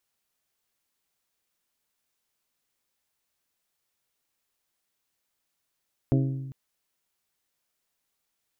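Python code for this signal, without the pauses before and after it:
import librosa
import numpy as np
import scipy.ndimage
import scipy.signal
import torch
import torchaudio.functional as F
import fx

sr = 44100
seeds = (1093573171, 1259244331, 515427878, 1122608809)

y = fx.strike_glass(sr, length_s=0.4, level_db=-19, body='bell', hz=134.0, decay_s=1.3, tilt_db=3.5, modes=6)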